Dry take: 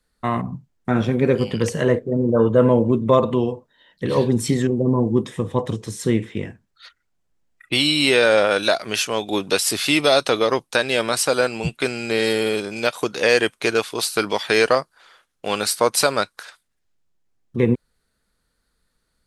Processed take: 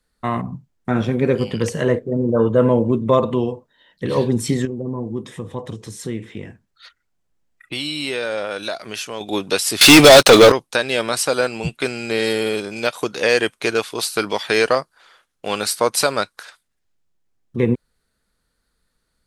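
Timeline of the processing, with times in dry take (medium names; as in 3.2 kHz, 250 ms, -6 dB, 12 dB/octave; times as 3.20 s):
4.65–9.21 s: compression 1.5:1, threshold -35 dBFS
9.81–10.52 s: waveshaping leveller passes 5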